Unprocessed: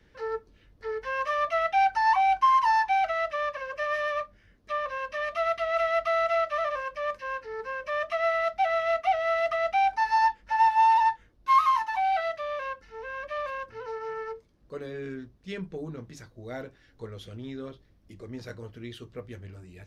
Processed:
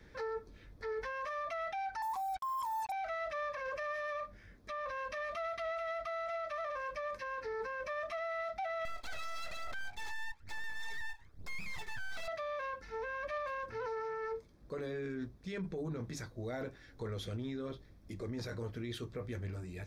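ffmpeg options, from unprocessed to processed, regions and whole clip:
-filter_complex "[0:a]asettb=1/sr,asplit=3[a][b][c];[a]atrim=end=2.024[d];[b]atrim=start=2.02:end=2.92,asetpts=PTS-STARTPTS,afade=t=in:d=0.004:c=qsin,afade=t=out:st=0.896:d=0.004:c=qsin,lowpass=f=1.1k:w=0.5412,lowpass=f=1.1k:w=1.3066,acrusher=bits=5:mix=0:aa=0.5[e];[c]atrim=start=2.916[f];[d][e]acrossfade=d=0.004:c1=hsin:c2=qsin[g];[g][f]acrossfade=d=0.004:c1=qsin:c2=hsin,asettb=1/sr,asplit=3[h][i][j];[h]atrim=end=8.854[k];[i]atrim=start=8.85:end=12.28,asetpts=PTS-STARTPTS,afade=t=in:d=0.004:c=qsin,afade=t=out:st=3.426:d=0.004:c=qsin,bandreject=f=820:w=19,aphaser=in_gain=1:out_gain=1:delay=1.2:decay=0.77:speed=1.1:type=sinusoidal,aeval=exprs='abs(val(0))':c=same[l];[j]atrim=start=12.276[m];[k][l]acrossfade=d=0.004:c1=hsin:c2=qsin[n];[n][m]acrossfade=d=0.004:c1=qsin:c2=hsin,bandreject=f=2.9k:w=6.1,acompressor=threshold=-30dB:ratio=6,alimiter=level_in=12dB:limit=-24dB:level=0:latency=1:release=11,volume=-12dB,volume=3dB"

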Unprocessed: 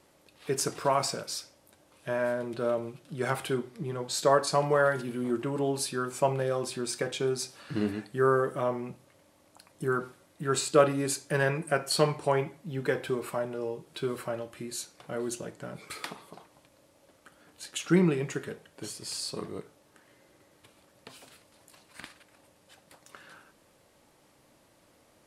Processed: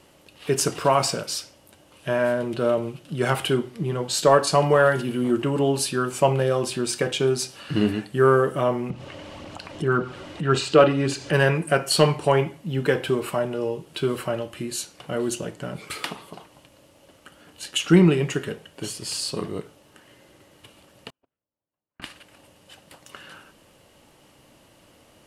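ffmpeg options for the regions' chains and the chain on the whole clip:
-filter_complex "[0:a]asettb=1/sr,asplit=3[a][b][c];[a]atrim=end=8.904[d];[b]atrim=start=8.9:end=11.33,asetpts=PTS-STARTPTS,afade=t=in:d=0.004:c=qsin,afade=t=out:st=2.426:d=0.004:c=qsin,lowpass=4.6k,aphaser=in_gain=1:out_gain=1:delay=3.6:decay=0.31:speed=1.8:type=triangular,acompressor=mode=upward:threshold=-32dB:ratio=2.5:attack=3.2:release=140:knee=2.83:detection=peak[e];[c]atrim=start=11.326[f];[d][e]acrossfade=d=0.004:c1=hsin:c2=qsin[g];[g][f]acrossfade=d=0.004:c1=qsin:c2=hsin,asettb=1/sr,asplit=3[h][i][j];[h]atrim=end=21.104[k];[i]atrim=start=21.1:end=22.02,asetpts=PTS-STARTPTS,afade=t=in:d=0.004:c=qsin,afade=t=out:st=0.916:d=0.004:c=qsin,lowpass=1.3k,agate=range=-38dB:threshold=-51dB:ratio=16:release=100:detection=peak[l];[j]atrim=start=22.016[m];[k][l]acrossfade=d=0.004:c1=hsin:c2=qsin[n];[n][m]acrossfade=d=0.004:c1=qsin:c2=hsin,equalizer=f=2.9k:w=7.1:g=10,acontrast=67,lowshelf=f=220:g=4"

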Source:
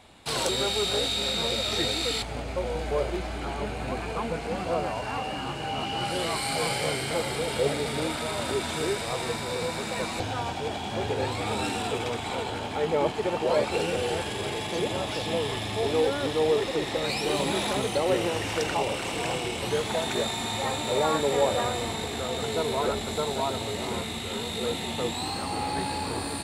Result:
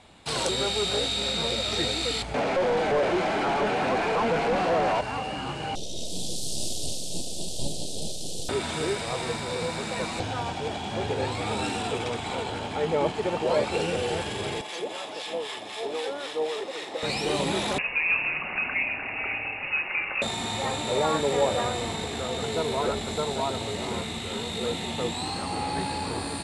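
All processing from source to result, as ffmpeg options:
-filter_complex "[0:a]asettb=1/sr,asplit=3[a][b][c];[a]atrim=end=2.344[d];[b]atrim=start=2.34:end=5.01,asetpts=PTS-STARTPTS,afade=t=in:d=0.004:c=qsin,afade=t=out:st=2.666:d=0.004:c=qsin,highpass=f=140:w=0.5412,highpass=f=140:w=1.3066,bandreject=f=1.2k:w=15,asplit=2[e][f];[f]highpass=f=720:p=1,volume=29dB,asoftclip=type=tanh:threshold=-16dB[g];[e][g]amix=inputs=2:normalize=0,lowpass=f=1.2k:p=1,volume=-6dB[h];[c]atrim=start=5.006[i];[d][h]acrossfade=d=0.004:c1=hsin:c2=qsin[j];[j][i]acrossfade=d=0.004:c1=qsin:c2=hsin,asettb=1/sr,asplit=3[k][l][m];[k]atrim=end=5.754[n];[l]atrim=start=5.75:end=8.49,asetpts=PTS-STARTPTS,afade=t=in:d=0.004:c=qsin,afade=t=out:st=2.736:d=0.004:c=qsin,highshelf=f=3.6k:g=7,aeval=exprs='abs(val(0))':c=same,asuperstop=centerf=1500:order=8:qfactor=0.54[o];[m]atrim=start=8.486[p];[n][o]acrossfade=d=0.004:c1=hsin:c2=qsin[q];[q][p]acrossfade=d=0.004:c1=qsin:c2=hsin,asettb=1/sr,asplit=3[r][s][t];[r]atrim=end=14.614[u];[s]atrim=start=14.61:end=17.03,asetpts=PTS-STARTPTS,afade=t=in:d=0.004:c=qsin,afade=t=out:st=2.416:d=0.004:c=qsin,highpass=410,acrossover=split=930[v][w];[v]aeval=exprs='val(0)*(1-0.7/2+0.7/2*cos(2*PI*3.9*n/s))':c=same[x];[w]aeval=exprs='val(0)*(1-0.7/2-0.7/2*cos(2*PI*3.9*n/s))':c=same[y];[x][y]amix=inputs=2:normalize=0[z];[t]atrim=start=17.026[aa];[u][z]acrossfade=d=0.004:c1=hsin:c2=qsin[ab];[ab][aa]acrossfade=d=0.004:c1=qsin:c2=hsin,asettb=1/sr,asplit=3[ac][ad][ae];[ac]atrim=end=17.784[af];[ad]atrim=start=17.78:end=20.22,asetpts=PTS-STARTPTS,afade=t=in:d=0.004:c=qsin,afade=t=out:st=2.436:d=0.004:c=qsin,highpass=230,lowpass=f=2.6k:t=q:w=0.5098,lowpass=f=2.6k:t=q:w=0.6013,lowpass=f=2.6k:t=q:w=0.9,lowpass=f=2.6k:t=q:w=2.563,afreqshift=-3000[ag];[ae]atrim=start=20.216[ah];[af][ag]acrossfade=d=0.004:c1=hsin:c2=qsin[ai];[ai][ah]acrossfade=d=0.004:c1=qsin:c2=hsin,lowpass=f=10k:w=0.5412,lowpass=f=10k:w=1.3066,equalizer=f=170:t=o:w=0.33:g=3"

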